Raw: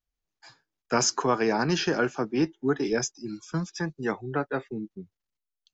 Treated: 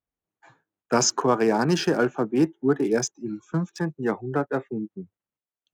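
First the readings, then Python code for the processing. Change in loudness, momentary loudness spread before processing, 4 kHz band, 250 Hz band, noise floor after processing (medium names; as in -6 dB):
+3.5 dB, 12 LU, +1.0 dB, +4.0 dB, under -85 dBFS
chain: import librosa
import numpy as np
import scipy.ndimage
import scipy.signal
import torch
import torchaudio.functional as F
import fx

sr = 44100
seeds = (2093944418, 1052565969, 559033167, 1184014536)

y = fx.wiener(x, sr, points=9)
y = scipy.signal.sosfilt(scipy.signal.butter(2, 100.0, 'highpass', fs=sr, output='sos'), y)
y = fx.peak_eq(y, sr, hz=2300.0, db=-5.0, octaves=1.9)
y = y * 10.0 ** (4.5 / 20.0)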